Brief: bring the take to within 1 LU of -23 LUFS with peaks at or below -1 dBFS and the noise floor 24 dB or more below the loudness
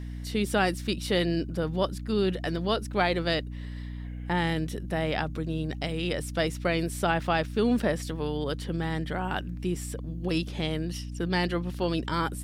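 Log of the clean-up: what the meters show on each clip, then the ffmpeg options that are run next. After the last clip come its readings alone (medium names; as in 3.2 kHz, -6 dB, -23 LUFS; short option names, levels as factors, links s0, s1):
hum 60 Hz; highest harmonic 300 Hz; hum level -34 dBFS; loudness -29.0 LUFS; peak level -9.5 dBFS; loudness target -23.0 LUFS
-> -af "bandreject=f=60:t=h:w=4,bandreject=f=120:t=h:w=4,bandreject=f=180:t=h:w=4,bandreject=f=240:t=h:w=4,bandreject=f=300:t=h:w=4"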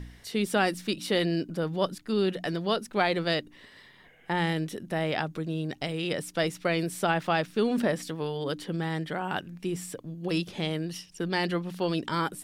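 hum not found; loudness -29.5 LUFS; peak level -10.0 dBFS; loudness target -23.0 LUFS
-> -af "volume=2.11"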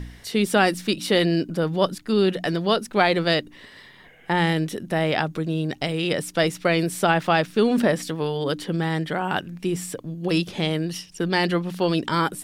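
loudness -23.0 LUFS; peak level -3.5 dBFS; noise floor -49 dBFS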